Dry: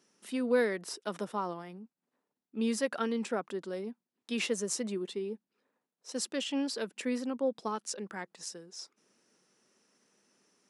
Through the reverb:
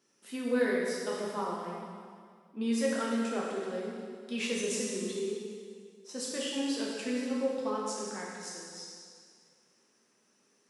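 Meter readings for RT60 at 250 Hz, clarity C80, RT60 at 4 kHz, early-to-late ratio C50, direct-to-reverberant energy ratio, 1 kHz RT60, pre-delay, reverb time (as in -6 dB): 2.1 s, 1.0 dB, 1.9 s, -0.5 dB, -4.5 dB, 2.0 s, 5 ms, 2.0 s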